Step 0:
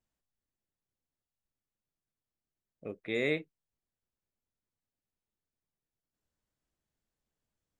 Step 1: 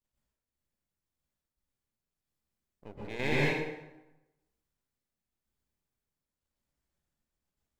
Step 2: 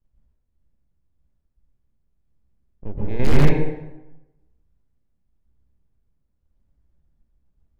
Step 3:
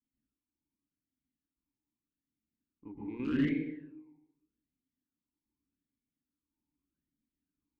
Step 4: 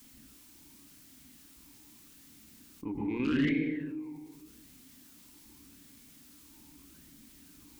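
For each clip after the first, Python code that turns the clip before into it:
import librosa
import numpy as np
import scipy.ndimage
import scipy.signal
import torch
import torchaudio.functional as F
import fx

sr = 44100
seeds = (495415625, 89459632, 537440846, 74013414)

y1 = np.maximum(x, 0.0)
y1 = fx.tremolo_shape(y1, sr, shape='saw_down', hz=0.94, depth_pct=55)
y1 = fx.rev_plate(y1, sr, seeds[0], rt60_s=1.0, hf_ratio=0.7, predelay_ms=110, drr_db=-6.5)
y2 = (np.mod(10.0 ** (19.5 / 20.0) * y1 + 1.0, 2.0) - 1.0) / 10.0 ** (19.5 / 20.0)
y2 = fx.tilt_eq(y2, sr, slope=-4.5)
y2 = y2 * 10.0 ** (4.5 / 20.0)
y3 = fx.vowel_sweep(y2, sr, vowels='i-u', hz=0.83)
y4 = fx.high_shelf(y3, sr, hz=2100.0, db=8.0)
y4 = fx.env_flatten(y4, sr, amount_pct=50)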